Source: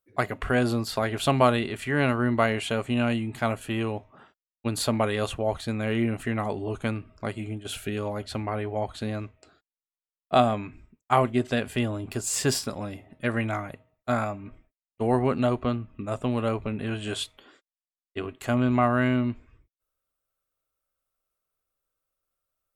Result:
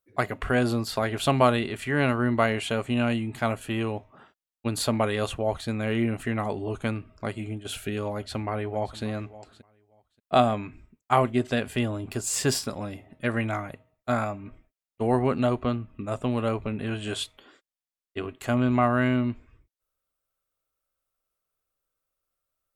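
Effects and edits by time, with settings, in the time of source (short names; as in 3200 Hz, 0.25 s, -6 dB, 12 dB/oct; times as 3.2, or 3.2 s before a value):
8.14–9.03 echo throw 0.58 s, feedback 15%, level -17 dB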